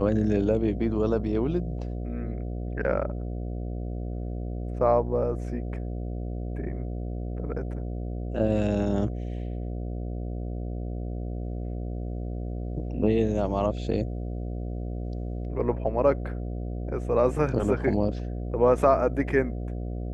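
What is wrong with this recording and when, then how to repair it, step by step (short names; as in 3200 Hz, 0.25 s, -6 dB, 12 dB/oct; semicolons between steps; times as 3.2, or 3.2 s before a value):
buzz 60 Hz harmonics 12 -32 dBFS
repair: de-hum 60 Hz, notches 12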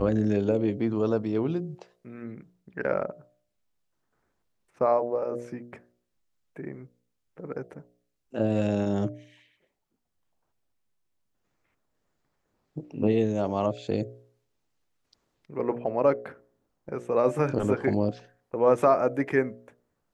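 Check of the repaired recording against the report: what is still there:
none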